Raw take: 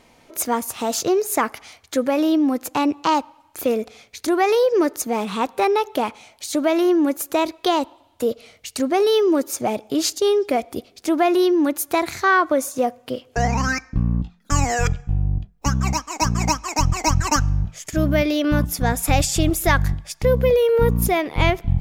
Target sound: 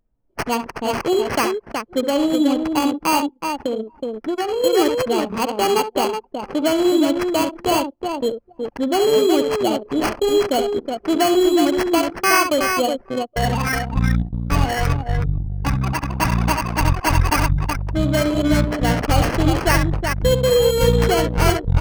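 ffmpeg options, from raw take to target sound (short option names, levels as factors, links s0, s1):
-filter_complex "[0:a]asettb=1/sr,asplit=3[s0][s1][s2];[s0]atrim=end=10.504[s3];[s1]atrim=start=10.5:end=11.82,asetpts=PTS-STARTPTS,afade=t=in:d=0.004:c=qsin,afade=t=out:st=1.316:d=0.004:c=qsin,aeval=exprs='val(0)+0.5*0.02*sgn(val(0))':c=same[s4];[s2]atrim=start=11.816[s5];[s3][s4]acrossfade=d=0.004:c1=hsin:c2=qsin[s6];[s6][s5]acrossfade=d=0.004:c1=qsin:c2=hsin,acrusher=samples=12:mix=1:aa=0.000001,aecho=1:1:68|370|819:0.422|0.562|0.119,asettb=1/sr,asplit=3[s7][s8][s9];[s7]atrim=end=3.614[s10];[s8]atrim=start=3.61:end=4.64,asetpts=PTS-STARTPTS,afade=t=in:d=0.004:c=qsin,afade=t=out:st=1.026:d=0.004:c=qsin,acompressor=threshold=0.112:ratio=4[s11];[s9]atrim=start=4.636[s12];[s10][s11]acrossfade=d=0.004:c1=hsin:c2=qsin[s13];[s13][s12]acrossfade=d=0.004:c1=qsin:c2=hsin,anlmdn=631"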